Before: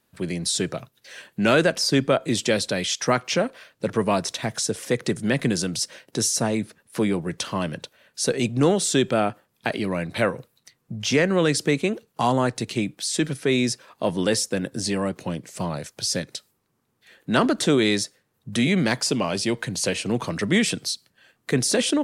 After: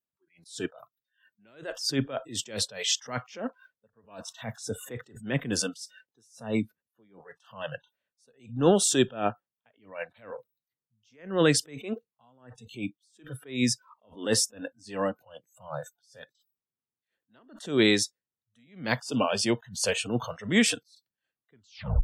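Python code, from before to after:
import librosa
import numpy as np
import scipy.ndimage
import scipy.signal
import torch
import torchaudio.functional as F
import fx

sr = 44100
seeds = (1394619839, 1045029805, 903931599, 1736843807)

y = fx.tape_stop_end(x, sr, length_s=0.52)
y = fx.noise_reduce_blind(y, sr, reduce_db=29)
y = fx.attack_slew(y, sr, db_per_s=150.0)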